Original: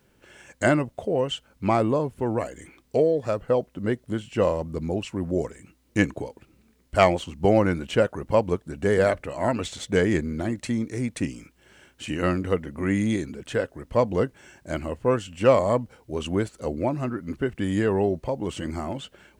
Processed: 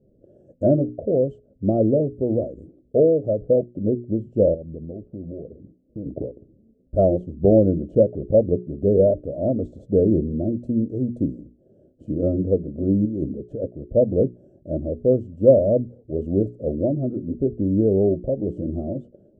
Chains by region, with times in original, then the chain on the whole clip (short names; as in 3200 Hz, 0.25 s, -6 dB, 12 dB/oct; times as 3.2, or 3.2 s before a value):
4.54–6.06 LPF 1500 Hz 24 dB/oct + compressor 4:1, threshold -36 dBFS
13.05–13.67 expander -34 dBFS + negative-ratio compressor -30 dBFS
whole clip: elliptic low-pass 610 Hz, stop band 40 dB; notches 60/120/180/240/300/360/420 Hz; gain +5.5 dB